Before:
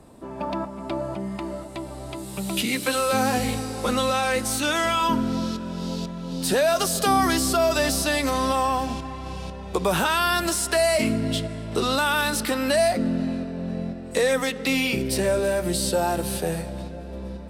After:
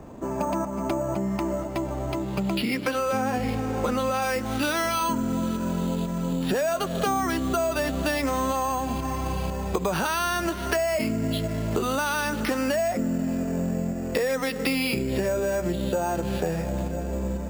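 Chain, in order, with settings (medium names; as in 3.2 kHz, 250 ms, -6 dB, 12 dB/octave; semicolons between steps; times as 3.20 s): careless resampling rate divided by 6×, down filtered, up hold; treble shelf 4.2 kHz -8.5 dB, from 4.22 s -2.5 dB; compression, threshold -30 dBFS, peak gain reduction 13 dB; trim +7 dB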